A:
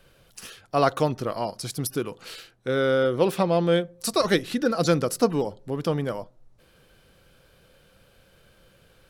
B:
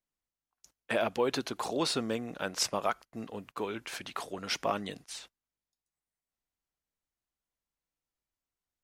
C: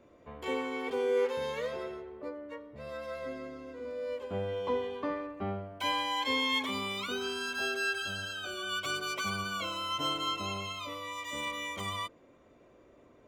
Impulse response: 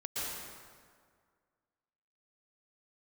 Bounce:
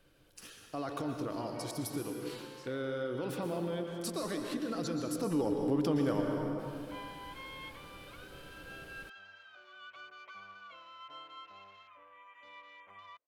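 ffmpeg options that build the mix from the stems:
-filter_complex "[0:a]equalizer=frequency=300:width=6.8:gain=12.5,alimiter=limit=-17.5dB:level=0:latency=1:release=13,afade=type=in:start_time=5.18:duration=0.28:silence=0.237137,asplit=2[link_01][link_02];[link_02]volume=-4dB[link_03];[1:a]acompressor=threshold=-39dB:ratio=6,volume=-20dB[link_04];[2:a]afwtdn=0.00794,acrossover=split=570 2800:gain=0.158 1 0.224[link_05][link_06][link_07];[link_05][link_06][link_07]amix=inputs=3:normalize=0,adelay=1100,volume=-13.5dB[link_08];[3:a]atrim=start_sample=2205[link_09];[link_03][link_09]afir=irnorm=-1:irlink=0[link_10];[link_01][link_04][link_08][link_10]amix=inputs=4:normalize=0,acompressor=threshold=-33dB:ratio=2"

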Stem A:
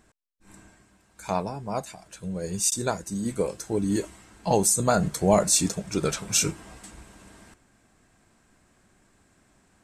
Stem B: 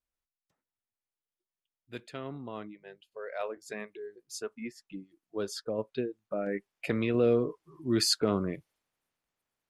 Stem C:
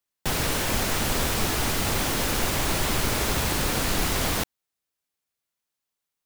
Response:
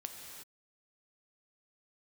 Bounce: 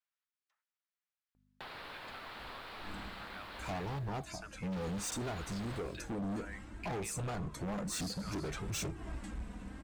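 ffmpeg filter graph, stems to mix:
-filter_complex "[0:a]bass=frequency=250:gain=10,treble=frequency=4000:gain=-11,acompressor=threshold=-26dB:ratio=8,flanger=delay=2.3:depth=1.8:regen=17:speed=0.63:shape=sinusoidal,adelay=2400,volume=2dB[link_01];[1:a]highpass=1100,highshelf=frequency=2100:gain=8,volume=0dB,asplit=2[link_02][link_03];[link_03]volume=-23dB[link_04];[2:a]aeval=exprs='val(0)+0.00794*(sin(2*PI*50*n/s)+sin(2*PI*2*50*n/s)/2+sin(2*PI*3*50*n/s)/3+sin(2*PI*4*50*n/s)/4+sin(2*PI*5*50*n/s)/5)':channel_layout=same,highshelf=frequency=5100:width_type=q:width=3:gain=-6.5,adelay=1350,volume=-11dB,asplit=3[link_05][link_06][link_07];[link_05]atrim=end=3.99,asetpts=PTS-STARTPTS,afade=type=out:start_time=3.986:duration=0.004:curve=hsin[link_08];[link_06]atrim=start=3.99:end=4.72,asetpts=PTS-STARTPTS,volume=0[link_09];[link_07]atrim=start=4.72,asetpts=PTS-STARTPTS,afade=type=in:duration=0.004:curve=hsin[link_10];[link_08][link_09][link_10]concat=n=3:v=0:a=1,asplit=2[link_11][link_12];[link_12]volume=-19dB[link_13];[link_02][link_11]amix=inputs=2:normalize=0,bandpass=frequency=1200:width_type=q:width=0.91:csg=0,acompressor=threshold=-46dB:ratio=6,volume=0dB[link_14];[3:a]atrim=start_sample=2205[link_15];[link_04][link_13]amix=inputs=2:normalize=0[link_16];[link_16][link_15]afir=irnorm=-1:irlink=0[link_17];[link_01][link_14][link_17]amix=inputs=3:normalize=0,volume=35.5dB,asoftclip=hard,volume=-35.5dB"

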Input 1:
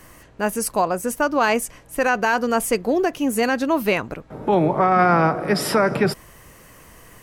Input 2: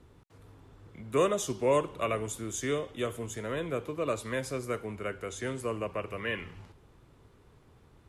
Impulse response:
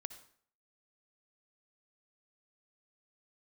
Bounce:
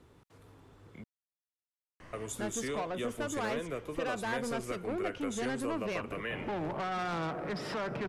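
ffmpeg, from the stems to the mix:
-filter_complex "[0:a]lowpass=3700,acompressor=threshold=-34dB:ratio=1.5,asoftclip=type=tanh:threshold=-27.5dB,adelay=2000,volume=-4.5dB[link_01];[1:a]lowshelf=frequency=100:gain=-8.5,acompressor=threshold=-35dB:ratio=3,volume=0dB,asplit=3[link_02][link_03][link_04];[link_02]atrim=end=1.04,asetpts=PTS-STARTPTS,afade=type=out:start_time=1.036:duration=0.004:curve=hsin[link_05];[link_03]atrim=start=1.04:end=2.13,asetpts=PTS-STARTPTS,volume=0[link_06];[link_04]atrim=start=2.13,asetpts=PTS-STARTPTS,afade=type=in:duration=0.004:curve=hsin[link_07];[link_05][link_06][link_07]concat=n=3:v=0:a=1[link_08];[link_01][link_08]amix=inputs=2:normalize=0"

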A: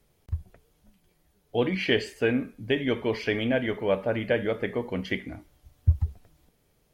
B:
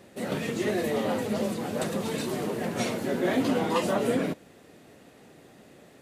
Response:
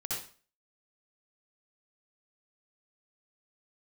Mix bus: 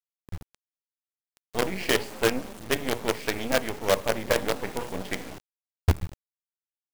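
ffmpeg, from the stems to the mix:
-filter_complex "[0:a]adynamicequalizer=threshold=0.0126:dfrequency=650:dqfactor=0.71:tfrequency=650:tqfactor=0.71:attack=5:release=100:ratio=0.375:range=2:mode=boostabove:tftype=bell,volume=-1.5dB,asplit=2[link_01][link_02];[1:a]adelay=1050,volume=-11dB[link_03];[link_02]apad=whole_len=311462[link_04];[link_03][link_04]sidechaingate=range=-13dB:threshold=-50dB:ratio=16:detection=peak[link_05];[link_01][link_05]amix=inputs=2:normalize=0,bandreject=frequency=60:width_type=h:width=6,bandreject=frequency=120:width_type=h:width=6,bandreject=frequency=180:width_type=h:width=6,bandreject=frequency=240:width_type=h:width=6,bandreject=frequency=300:width_type=h:width=6,bandreject=frequency=360:width_type=h:width=6,bandreject=frequency=420:width_type=h:width=6,bandreject=frequency=480:width_type=h:width=6,bandreject=frequency=540:width_type=h:width=6,bandreject=frequency=600:width_type=h:width=6,acrusher=bits=4:dc=4:mix=0:aa=0.000001"

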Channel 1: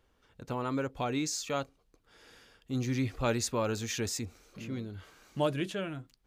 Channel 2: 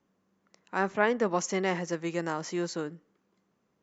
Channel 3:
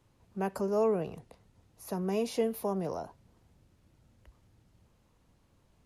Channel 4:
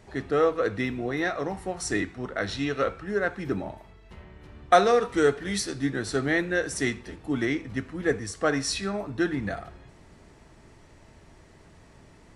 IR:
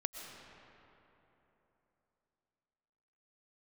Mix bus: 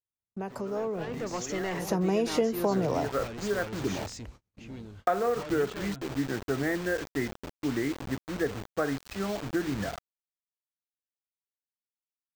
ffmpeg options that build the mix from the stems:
-filter_complex "[0:a]lowpass=7400,asoftclip=type=hard:threshold=-35dB,volume=-13dB[link_01];[1:a]asoftclip=type=tanh:threshold=-24.5dB,volume=-8dB[link_02];[2:a]volume=2dB[link_03];[3:a]afwtdn=0.0126,lowpass=1700,acrusher=bits=5:mix=0:aa=0.000001,adelay=350,volume=-11dB,afade=type=in:start_time=2.68:duration=0.56:silence=0.421697[link_04];[link_02][link_03][link_04]amix=inputs=3:normalize=0,acompressor=threshold=-34dB:ratio=3,volume=0dB[link_05];[link_01][link_05]amix=inputs=2:normalize=0,dynaudnorm=framelen=210:gausssize=13:maxgain=9.5dB,equalizer=frequency=11000:width_type=o:width=0.32:gain=-12,agate=range=-41dB:threshold=-47dB:ratio=16:detection=peak"

